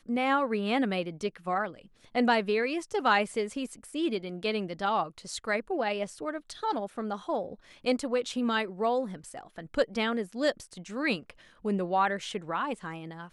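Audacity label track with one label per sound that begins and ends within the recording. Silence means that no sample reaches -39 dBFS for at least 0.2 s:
2.150000	7.540000	sound
7.850000	11.300000	sound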